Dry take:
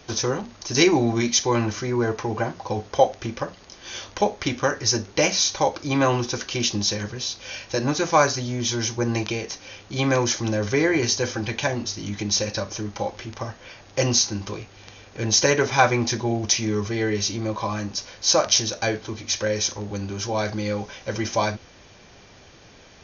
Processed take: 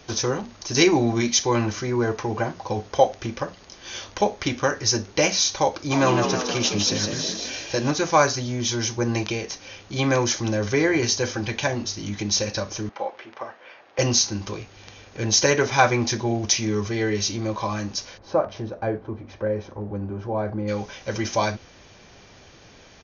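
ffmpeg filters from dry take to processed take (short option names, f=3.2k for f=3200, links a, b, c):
-filter_complex "[0:a]asplit=3[a][b][c];[a]afade=t=out:st=5.9:d=0.02[d];[b]asplit=8[e][f][g][h][i][j][k][l];[f]adelay=158,afreqshift=61,volume=-4.5dB[m];[g]adelay=316,afreqshift=122,volume=-10dB[n];[h]adelay=474,afreqshift=183,volume=-15.5dB[o];[i]adelay=632,afreqshift=244,volume=-21dB[p];[j]adelay=790,afreqshift=305,volume=-26.6dB[q];[k]adelay=948,afreqshift=366,volume=-32.1dB[r];[l]adelay=1106,afreqshift=427,volume=-37.6dB[s];[e][m][n][o][p][q][r][s]amix=inputs=8:normalize=0,afade=t=in:st=5.9:d=0.02,afade=t=out:st=7.9:d=0.02[t];[c]afade=t=in:st=7.9:d=0.02[u];[d][t][u]amix=inputs=3:normalize=0,asettb=1/sr,asplit=3[v][w][x];[v]atrim=end=12.894[y];[w]atrim=start=12.89:end=13.99,asetpts=PTS-STARTPTS,afade=t=in:d=0.004:c=qsin,afade=t=out:st=1.096:d=0.004:c=qsin,highpass=450,lowpass=2.4k[z];[x]atrim=start=13.986[aa];[y][z]acrossfade=d=0.004:c1=hsin:c2=qsin[ab];[ab][aa]acrossfade=d=0.004:c1=qsin:c2=hsin,asplit=3[ac][ad][ae];[ac]afade=t=out:st=18.17:d=0.02[af];[ad]lowpass=1k,afade=t=in:st=18.17:d=0.02,afade=t=out:st=20.67:d=0.02[ag];[ae]afade=t=in:st=20.67:d=0.02[ah];[af][ag][ah]amix=inputs=3:normalize=0"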